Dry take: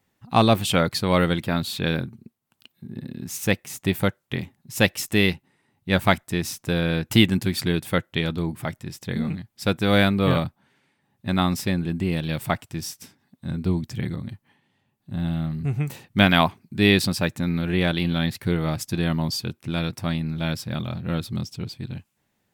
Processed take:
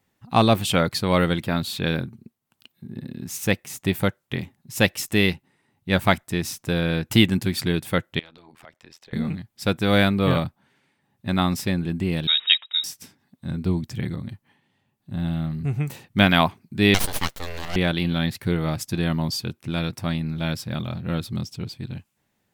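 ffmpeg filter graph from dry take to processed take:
-filter_complex "[0:a]asettb=1/sr,asplit=3[a][b][c];[a]atrim=end=8.194[d];[b]atrim=start=8.19:end=9.13,asetpts=PTS-STARTPTS,afade=t=in:d=0.004:c=qsin,afade=t=out:st=0.936:d=0.004:c=qsin,acrossover=split=390 6100:gain=0.126 1 0.2[e][f][g];[e][f][g]amix=inputs=3:normalize=0,acompressor=threshold=-39dB:ratio=5:attack=3.2:release=140:knee=1:detection=peak,tremolo=f=84:d=0.919[h];[c]atrim=start=9.126[i];[d][h]acrossfade=d=0.004:c1=hsin:c2=qsin[j];[j][i]acrossfade=d=0.004:c1=qsin:c2=hsin,asettb=1/sr,asplit=3[k][l][m];[k]atrim=end=12.274[n];[l]atrim=start=12.27:end=12.84,asetpts=PTS-STARTPTS,afade=t=in:d=0.004:c=qsin,afade=t=out:st=0.566:d=0.004:c=qsin,lowpass=f=3.3k:t=q:w=0.5098,lowpass=f=3.3k:t=q:w=0.6013,lowpass=f=3.3k:t=q:w=0.9,lowpass=f=3.3k:t=q:w=2.563,afreqshift=-3900,tiltshelf=f=1.5k:g=-9.5[o];[m]atrim=start=12.836[p];[n][o]acrossfade=d=0.004:c1=hsin:c2=qsin[q];[q][p]acrossfade=d=0.004:c1=qsin:c2=hsin,asettb=1/sr,asplit=3[r][s][t];[r]atrim=end=16.944[u];[s]atrim=start=16.94:end=17.76,asetpts=PTS-STARTPTS,afade=t=in:d=0.004:c=qsin,afade=t=out:st=0.816:d=0.004:c=qsin,highpass=f=250:w=0.5412,highpass=f=250:w=1.3066,highshelf=f=2.6k:g=6.5,aeval=exprs='abs(val(0))':c=same[v];[t]atrim=start=17.756[w];[u][v]acrossfade=d=0.004:c1=hsin:c2=qsin[x];[x][w]acrossfade=d=0.004:c1=qsin:c2=hsin"

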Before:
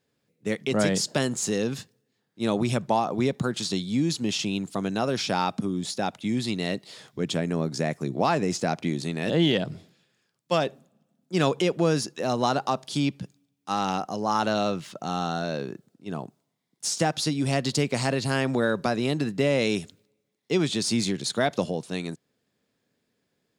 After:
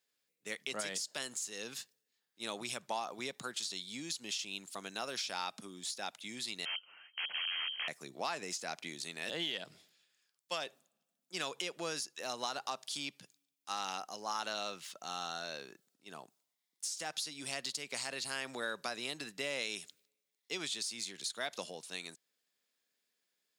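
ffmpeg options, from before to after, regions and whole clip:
-filter_complex "[0:a]asettb=1/sr,asplit=3[a][b][c];[a]atrim=end=6.654[d];[b]atrim=start=6.65:end=7.88,asetpts=PTS-STARTPTS,afade=t=in:d=0.004:c=qsin,afade=t=out:st=1.226:d=0.004:c=qsin,aeval=exprs='(mod(15.8*val(0)+1,2)-1)/15.8':c=same,lowpass=f=2.8k:t=q:w=0.5098,lowpass=f=2.8k:t=q:w=0.6013,lowpass=f=2.8k:t=q:w=0.9,lowpass=f=2.8k:t=q:w=2.563,afreqshift=-3300[e];[c]atrim=start=7.876[f];[d][e]acrossfade=d=0.004:c1=hsin:c2=qsin[g];[g][f]acrossfade=d=0.004:c1=qsin:c2=hsin,aderivative,acompressor=threshold=-36dB:ratio=6,highshelf=f=4.2k:g=-10.5,volume=6.5dB"

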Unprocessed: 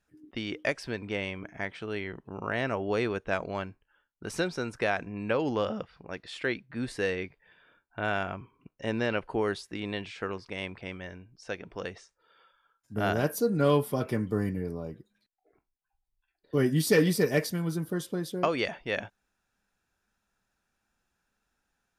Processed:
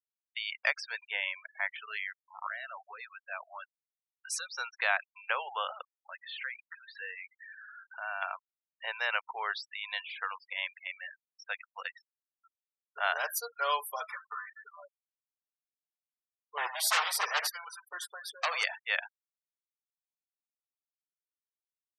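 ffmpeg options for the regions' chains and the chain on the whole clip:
-filter_complex "[0:a]asettb=1/sr,asplit=3[a][b][c];[a]atrim=end=2.474[d];[b]atrim=start=2.47:end=4.5,asetpts=PTS-STARTPTS,afade=t=in:d=0.004:c=qsin,afade=t=out:st=2.026:d=0.004:c=qsin,bass=f=250:g=13,treble=f=4k:g=6,acompressor=threshold=-28dB:ratio=6:attack=3.2:release=140:knee=1:detection=peak,asoftclip=type=hard:threshold=-26.5dB[e];[c]atrim=start=4.496[f];[d][e]acrossfade=d=0.004:c1=hsin:c2=qsin[g];[g][f]acrossfade=d=0.004:c1=qsin:c2=hsin,asettb=1/sr,asplit=3[h][i][j];[h]atrim=end=6.094[k];[i]atrim=start=6.09:end=8.22,asetpts=PTS-STARTPTS,afade=t=in:d=0.004:c=qsin,afade=t=out:st=2.126:d=0.004:c=qsin,aeval=exprs='val(0)+0.5*0.00708*sgn(val(0))':c=same,equalizer=f=10k:w=0.36:g=-11.5,acompressor=threshold=-37dB:ratio=2:attack=3.2:release=140:knee=1:detection=peak[l];[j]atrim=start=8.216[m];[k][l]acrossfade=d=0.004:c1=hsin:c2=qsin[n];[n][m]acrossfade=d=0.004:c1=qsin:c2=hsin,asettb=1/sr,asplit=3[o][p][q];[o]atrim=end=14.104[r];[p]atrim=start=14.1:end=14.76,asetpts=PTS-STARTPTS,afade=t=in:d=0.004:c=qsin,afade=t=out:st=0.656:d=0.004:c=qsin,equalizer=f=1.3k:t=o:w=0.72:g=14.5,acompressor=threshold=-31dB:ratio=5:attack=3.2:release=140:knee=1:detection=peak[s];[q]atrim=start=14.756[t];[r][s]acrossfade=d=0.004:c1=hsin:c2=qsin[u];[u][t]acrossfade=d=0.004:c1=qsin:c2=hsin,asettb=1/sr,asplit=3[v][w][x];[v]atrim=end=16.574[y];[w]atrim=start=16.57:end=18.64,asetpts=PTS-STARTPTS,afade=t=in:d=0.004:c=qsin,afade=t=out:st=2.066:d=0.004:c=qsin,aeval=exprs='0.0794*(abs(mod(val(0)/0.0794+3,4)-2)-1)':c=same,asplit=2[z][aa];[aa]adelay=80,lowpass=f=2.5k:p=1,volume=-9dB,asplit=2[ab][ac];[ac]adelay=80,lowpass=f=2.5k:p=1,volume=0.24,asplit=2[ad][ae];[ae]adelay=80,lowpass=f=2.5k:p=1,volume=0.24[af];[z][ab][ad][af]amix=inputs=4:normalize=0,atrim=end_sample=91287[ag];[x]atrim=start=18.636[ah];[y][ag]acrossfade=d=0.004:c1=hsin:c2=qsin[ai];[ai][ah]acrossfade=d=0.004:c1=qsin:c2=hsin,highpass=f=860:w=0.5412,highpass=f=860:w=1.3066,afftfilt=real='re*gte(hypot(re,im),0.01)':imag='im*gte(hypot(re,im),0.01)':win_size=1024:overlap=0.75,volume=3.5dB"

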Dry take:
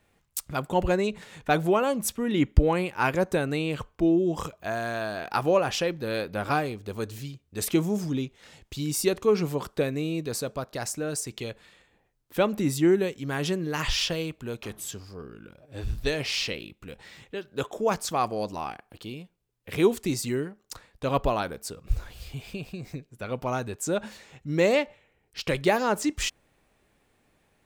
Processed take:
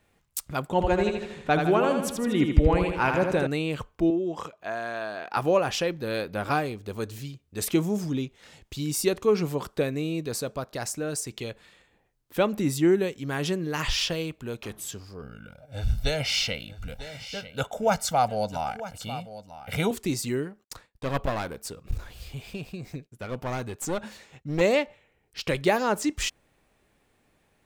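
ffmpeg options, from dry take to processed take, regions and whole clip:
-filter_complex "[0:a]asettb=1/sr,asplit=3[a][b][c];[a]atrim=end=0.704[d];[b]atrim=start=0.7:end=3.47,asetpts=PTS-STARTPTS,afade=t=in:d=0.004:c=qsin,afade=t=out:st=2.766:d=0.004:c=qsin,highshelf=f=8.2k:g=-12,aecho=1:1:79|158|237|316|395|474|553:0.531|0.287|0.155|0.0836|0.0451|0.0244|0.0132,atrim=end_sample=122157[e];[c]atrim=start=3.466[f];[d][e]acrossfade=d=0.004:c1=hsin:c2=qsin[g];[g][f]acrossfade=d=0.004:c1=qsin:c2=hsin,asettb=1/sr,asplit=3[h][i][j];[h]atrim=end=4.104[k];[i]atrim=start=4.1:end=5.37,asetpts=PTS-STARTPTS,afade=t=in:d=0.004:c=qsin,afade=t=out:st=1.266:d=0.004:c=qsin,highpass=f=410:p=1,aemphasis=mode=reproduction:type=50kf[l];[j]atrim=start=5.366[m];[k][l]acrossfade=d=0.004:c1=hsin:c2=qsin[n];[n][m]acrossfade=d=0.004:c1=qsin:c2=hsin,asettb=1/sr,asplit=3[o][p][q];[o]atrim=end=15.224[r];[p]atrim=start=15.22:end=19.91,asetpts=PTS-STARTPTS,afade=t=in:d=0.004:c=qsin,afade=t=out:st=4.686:d=0.004:c=qsin,aecho=1:1:1.4:0.95,atrim=end_sample=206829,aecho=1:1:946:0.2,atrim=end_sample=206829[s];[q]atrim=start=19.906[t];[r][s]acrossfade=d=0.004:c1=hsin:c2=qsin[u];[u][t]acrossfade=d=0.004:c1=qsin:c2=hsin,asettb=1/sr,asplit=3[v][w][x];[v]atrim=end=20.644[y];[w]atrim=start=20.64:end=24.61,asetpts=PTS-STARTPTS,afade=t=in:d=0.004:c=qsin,afade=t=out:st=3.966:d=0.004:c=qsin,agate=range=-33dB:threshold=-51dB:ratio=3:release=100:detection=peak,aeval=exprs='clip(val(0),-1,0.0251)':c=same[z];[x]atrim=start=24.606[aa];[y][z]acrossfade=d=0.004:c1=hsin:c2=qsin[ab];[ab][aa]acrossfade=d=0.004:c1=qsin:c2=hsin"

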